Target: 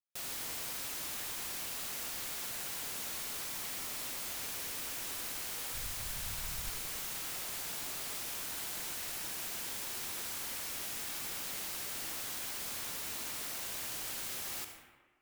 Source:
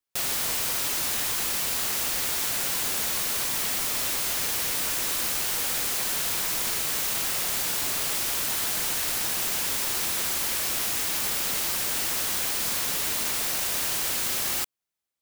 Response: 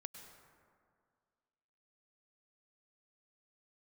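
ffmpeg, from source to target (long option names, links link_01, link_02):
-filter_complex "[0:a]asplit=3[link_01][link_02][link_03];[link_01]afade=type=out:start_time=5.73:duration=0.02[link_04];[link_02]asubboost=boost=11:cutoff=94,afade=type=in:start_time=5.73:duration=0.02,afade=type=out:start_time=6.7:duration=0.02[link_05];[link_03]afade=type=in:start_time=6.7:duration=0.02[link_06];[link_04][link_05][link_06]amix=inputs=3:normalize=0[link_07];[1:a]atrim=start_sample=2205,asetrate=70560,aresample=44100[link_08];[link_07][link_08]afir=irnorm=-1:irlink=0,volume=-3.5dB"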